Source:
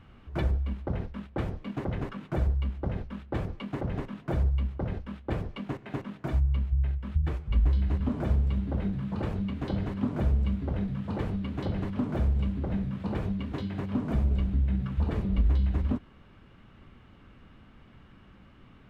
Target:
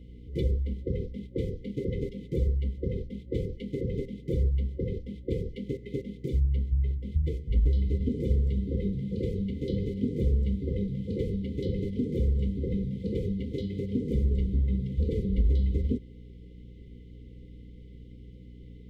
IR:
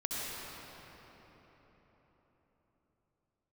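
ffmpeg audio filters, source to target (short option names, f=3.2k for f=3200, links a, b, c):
-af "aeval=exprs='val(0)+0.00501*(sin(2*PI*60*n/s)+sin(2*PI*2*60*n/s)/2+sin(2*PI*3*60*n/s)/3+sin(2*PI*4*60*n/s)/4+sin(2*PI*5*60*n/s)/5)':c=same,afftfilt=real='re*(1-between(b*sr/4096,540,2000))':imag='im*(1-between(b*sr/4096,540,2000))':win_size=4096:overlap=0.75,superequalizer=7b=2.24:11b=1.41:12b=0.316"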